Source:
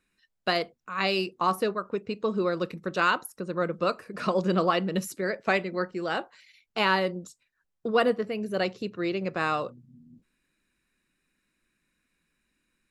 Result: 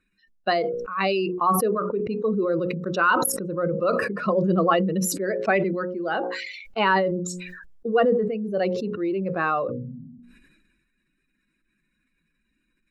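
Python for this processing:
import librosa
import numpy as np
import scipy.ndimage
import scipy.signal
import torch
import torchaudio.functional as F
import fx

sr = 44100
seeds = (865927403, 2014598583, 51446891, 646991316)

y = fx.spec_expand(x, sr, power=1.7)
y = fx.hum_notches(y, sr, base_hz=60, count=9)
y = fx.sustainer(y, sr, db_per_s=38.0)
y = F.gain(torch.from_numpy(y), 3.5).numpy()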